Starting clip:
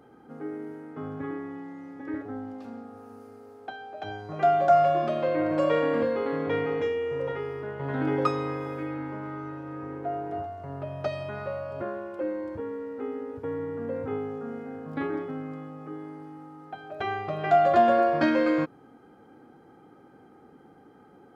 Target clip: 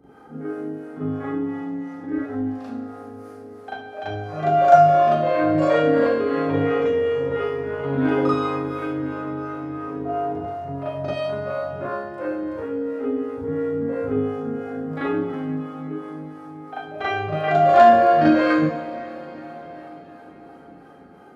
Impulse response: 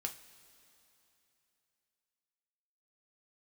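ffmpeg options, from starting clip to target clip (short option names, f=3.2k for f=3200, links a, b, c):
-filter_complex "[0:a]acrossover=split=440[a][b];[a]aeval=exprs='val(0)*(1-0.7/2+0.7/2*cos(2*PI*2.9*n/s))':c=same[c];[b]aeval=exprs='val(0)*(1-0.7/2-0.7/2*cos(2*PI*2.9*n/s))':c=same[d];[c][d]amix=inputs=2:normalize=0,asplit=2[e][f];[1:a]atrim=start_sample=2205,asetrate=24255,aresample=44100,adelay=39[g];[f][g]afir=irnorm=-1:irlink=0,volume=4.5dB[h];[e][h]amix=inputs=2:normalize=0,volume=2dB"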